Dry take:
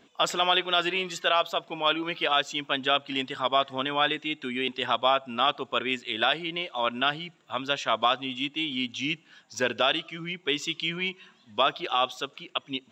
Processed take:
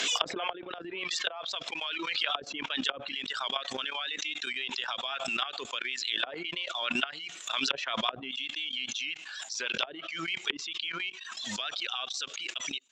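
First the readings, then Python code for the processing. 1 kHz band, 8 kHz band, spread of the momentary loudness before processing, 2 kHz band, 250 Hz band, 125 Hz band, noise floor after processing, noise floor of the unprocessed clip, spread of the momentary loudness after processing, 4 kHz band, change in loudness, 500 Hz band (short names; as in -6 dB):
-11.0 dB, +4.0 dB, 8 LU, -4.0 dB, -8.5 dB, -11.5 dB, -47 dBFS, -60 dBFS, 6 LU, -3.5 dB, -5.5 dB, -12.5 dB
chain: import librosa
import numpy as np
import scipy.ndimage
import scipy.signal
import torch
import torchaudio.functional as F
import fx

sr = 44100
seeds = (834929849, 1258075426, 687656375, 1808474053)

p1 = fx.dereverb_blind(x, sr, rt60_s=0.78)
p2 = np.sign(p1) * np.maximum(np.abs(p1) - 10.0 ** (-43.0 / 20.0), 0.0)
p3 = p1 + (p2 * 10.0 ** (-11.0 / 20.0))
p4 = fx.weighting(p3, sr, curve='ITU-R 468')
p5 = fx.rotary(p4, sr, hz=7.5)
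p6 = fx.wow_flutter(p5, sr, seeds[0], rate_hz=2.1, depth_cents=20.0)
p7 = fx.low_shelf(p6, sr, hz=240.0, db=-9.0)
p8 = fx.level_steps(p7, sr, step_db=17)
p9 = fx.env_lowpass_down(p8, sr, base_hz=370.0, full_db=-21.5)
y = fx.pre_swell(p9, sr, db_per_s=28.0)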